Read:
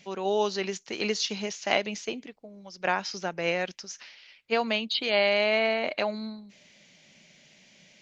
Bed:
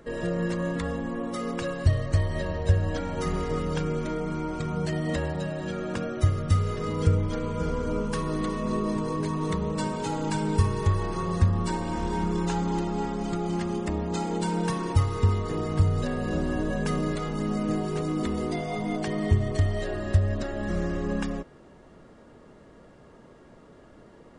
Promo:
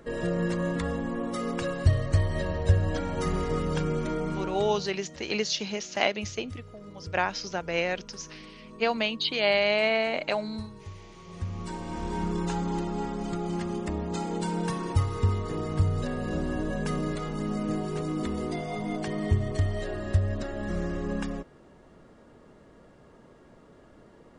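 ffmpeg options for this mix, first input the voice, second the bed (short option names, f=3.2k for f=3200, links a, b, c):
-filter_complex "[0:a]adelay=4300,volume=0dB[a];[1:a]volume=17dB,afade=t=out:st=4.27:d=0.66:silence=0.105925,afade=t=in:st=11.24:d=1.01:silence=0.141254[b];[a][b]amix=inputs=2:normalize=0"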